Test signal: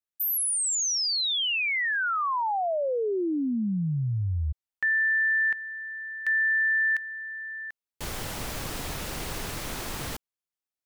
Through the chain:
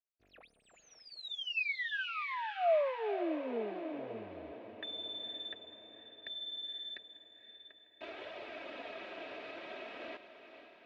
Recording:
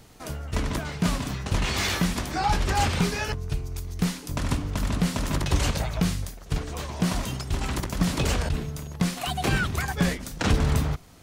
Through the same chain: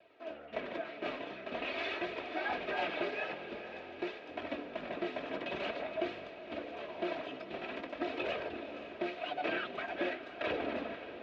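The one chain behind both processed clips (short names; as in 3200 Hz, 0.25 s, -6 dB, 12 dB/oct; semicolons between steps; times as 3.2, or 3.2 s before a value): minimum comb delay 3.1 ms; high shelf 2000 Hz -10.5 dB; flange 0.48 Hz, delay 1.6 ms, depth 5.4 ms, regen -34%; speaker cabinet 340–3800 Hz, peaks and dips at 470 Hz +7 dB, 670 Hz +8 dB, 960 Hz -5 dB, 1700 Hz +3 dB, 2500 Hz +10 dB, 3600 Hz +4 dB; diffused feedback echo 0.516 s, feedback 60%, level -11 dB; gain -3.5 dB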